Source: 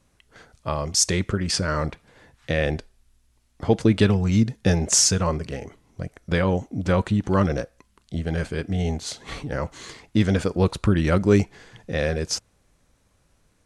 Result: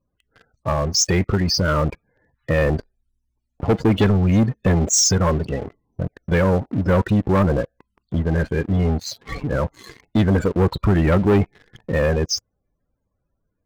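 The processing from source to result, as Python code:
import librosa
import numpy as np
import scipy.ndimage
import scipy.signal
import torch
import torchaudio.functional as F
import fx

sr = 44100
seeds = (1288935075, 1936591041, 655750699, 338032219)

y = fx.spec_topn(x, sr, count=32)
y = fx.leveller(y, sr, passes=3)
y = F.gain(torch.from_numpy(y), -4.0).numpy()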